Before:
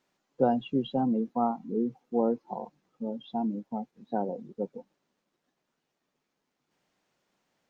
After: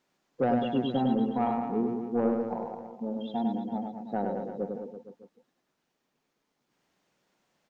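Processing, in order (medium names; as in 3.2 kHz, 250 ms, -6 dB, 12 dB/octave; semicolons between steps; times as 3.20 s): saturation -18.5 dBFS, distortion -17 dB; on a send: reverse bouncing-ball echo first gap 100 ms, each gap 1.1×, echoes 5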